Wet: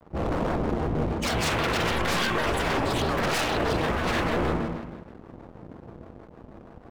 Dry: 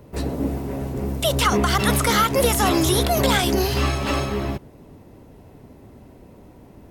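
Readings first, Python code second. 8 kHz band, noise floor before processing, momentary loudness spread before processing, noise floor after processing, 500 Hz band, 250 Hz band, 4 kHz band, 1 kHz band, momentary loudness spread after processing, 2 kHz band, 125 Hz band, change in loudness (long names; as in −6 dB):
−11.0 dB, −47 dBFS, 10 LU, −49 dBFS, −4.5 dB, −5.5 dB, −6.0 dB, −4.5 dB, 20 LU, −2.0 dB, −6.0 dB, −5.5 dB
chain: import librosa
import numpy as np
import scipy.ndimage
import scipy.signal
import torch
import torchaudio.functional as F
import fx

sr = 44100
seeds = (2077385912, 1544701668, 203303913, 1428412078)

p1 = scipy.ndimage.median_filter(x, 3, mode='constant')
p2 = fx.rider(p1, sr, range_db=4, speed_s=2.0)
p3 = p2 + fx.room_flutter(p2, sr, wall_m=9.5, rt60_s=0.45, dry=0)
p4 = fx.spec_gate(p3, sr, threshold_db=-20, keep='strong')
p5 = 10.0 ** (-21.0 / 20.0) * (np.abs((p4 / 10.0 ** (-21.0 / 20.0) + 3.0) % 4.0 - 2.0) - 1.0)
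p6 = fx.rev_spring(p5, sr, rt60_s=1.4, pass_ms=(38, 45, 50), chirp_ms=65, drr_db=0.5)
p7 = np.sign(p6) * np.maximum(np.abs(p6) - 10.0 ** (-39.5 / 20.0), 0.0)
p8 = fx.vibrato_shape(p7, sr, shape='square', rate_hz=6.3, depth_cents=250.0)
y = p8 * librosa.db_to_amplitude(-1.0)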